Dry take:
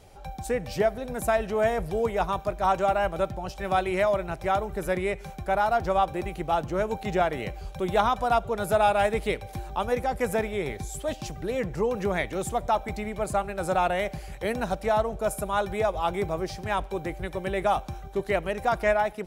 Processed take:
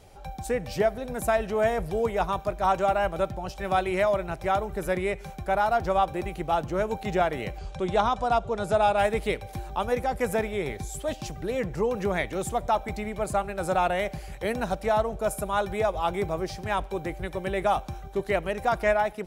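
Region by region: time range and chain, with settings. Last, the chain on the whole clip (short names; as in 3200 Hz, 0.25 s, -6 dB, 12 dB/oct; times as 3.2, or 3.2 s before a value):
7.58–8.98 LPF 8500 Hz 24 dB/oct + dynamic EQ 1900 Hz, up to -4 dB, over -38 dBFS, Q 1.3 + upward compressor, threshold -34 dBFS
whole clip: dry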